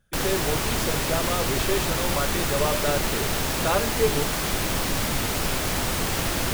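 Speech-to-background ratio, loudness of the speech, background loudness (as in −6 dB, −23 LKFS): −4.0 dB, −29.0 LKFS, −25.0 LKFS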